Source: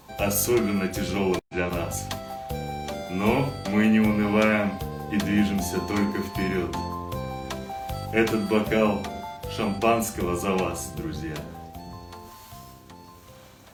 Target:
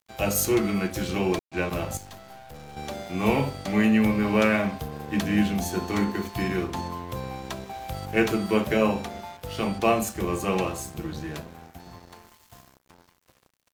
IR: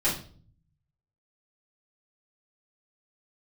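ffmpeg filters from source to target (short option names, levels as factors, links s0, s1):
-filter_complex "[0:a]asettb=1/sr,asplit=3[s0][s1][s2];[s0]atrim=end=1.974[s3];[s1]atrim=start=1.97:end=2.77,asetpts=PTS-STARTPTS,afade=t=in:d=0.004:c=qsin,afade=t=out:st=0.796:d=0.004:c=qsin,aeval=exprs='(tanh(56.2*val(0)+0.3)-tanh(0.3))/56.2':c=same[s4];[s2]atrim=start=2.766[s5];[s3][s4]acrossfade=d=0.004:c1=hsin:c2=qsin[s6];[s6][s5]acrossfade=d=0.004:c1=qsin:c2=hsin,aeval=exprs='sgn(val(0))*max(abs(val(0))-0.00708,0)':c=same"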